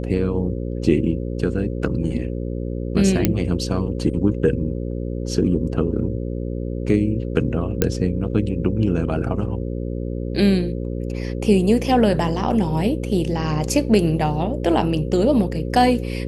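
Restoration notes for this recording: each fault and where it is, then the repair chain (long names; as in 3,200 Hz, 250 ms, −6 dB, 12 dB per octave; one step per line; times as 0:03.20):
mains buzz 60 Hz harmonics 9 −26 dBFS
0:03.25: click −2 dBFS
0:07.82: click −2 dBFS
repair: click removal
hum removal 60 Hz, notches 9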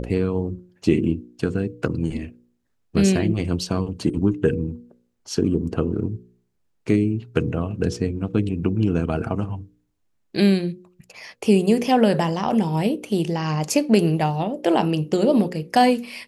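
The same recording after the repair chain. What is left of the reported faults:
none of them is left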